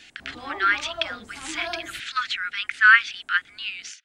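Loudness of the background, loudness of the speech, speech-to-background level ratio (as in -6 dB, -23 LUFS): -38.0 LUFS, -22.5 LUFS, 15.5 dB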